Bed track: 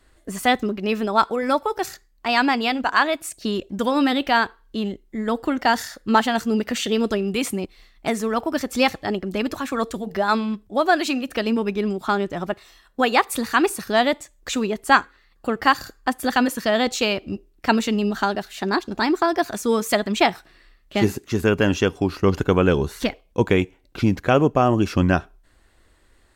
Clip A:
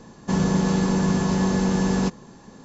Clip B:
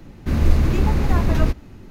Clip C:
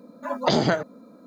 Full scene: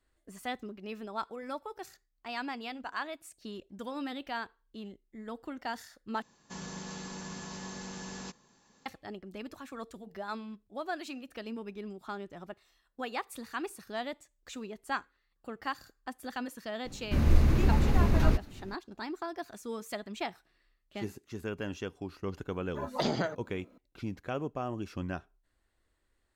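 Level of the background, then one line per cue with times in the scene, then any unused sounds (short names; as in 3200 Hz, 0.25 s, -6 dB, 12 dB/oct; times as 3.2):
bed track -18.5 dB
6.22 replace with A -17 dB + tilt shelf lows -7 dB
16.85 add B -6.5 dB
22.52 add C -10 dB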